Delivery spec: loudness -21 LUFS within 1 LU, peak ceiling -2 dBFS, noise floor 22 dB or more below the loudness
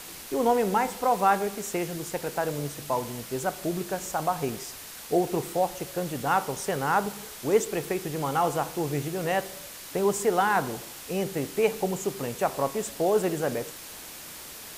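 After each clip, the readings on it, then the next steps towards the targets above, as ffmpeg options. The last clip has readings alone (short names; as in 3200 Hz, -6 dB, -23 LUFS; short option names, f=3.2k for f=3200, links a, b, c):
noise floor -43 dBFS; noise floor target -50 dBFS; loudness -28.0 LUFS; peak -9.5 dBFS; loudness target -21.0 LUFS
-> -af "afftdn=nr=7:nf=-43"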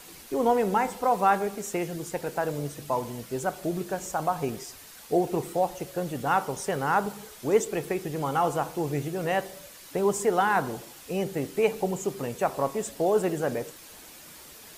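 noise floor -48 dBFS; noise floor target -50 dBFS
-> -af "afftdn=nr=6:nf=-48"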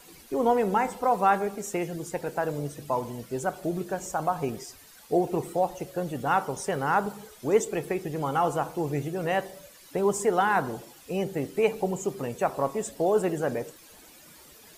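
noise floor -52 dBFS; loudness -28.0 LUFS; peak -9.5 dBFS; loudness target -21.0 LUFS
-> -af "volume=7dB"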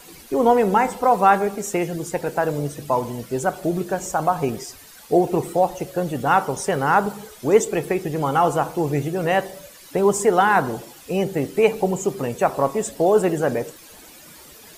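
loudness -21.0 LUFS; peak -2.5 dBFS; noise floor -45 dBFS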